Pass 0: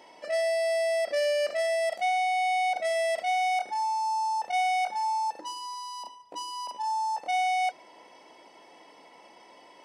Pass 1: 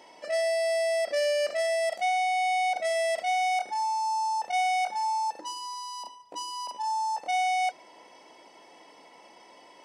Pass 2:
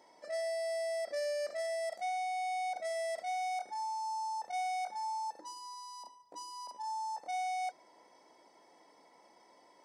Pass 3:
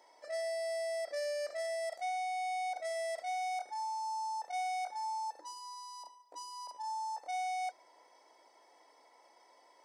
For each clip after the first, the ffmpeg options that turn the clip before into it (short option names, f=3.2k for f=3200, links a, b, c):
-af "equalizer=f=6.9k:w=1.3:g=3.5"
-af "equalizer=f=2.8k:w=3.9:g=-15,volume=-9dB"
-af "highpass=460"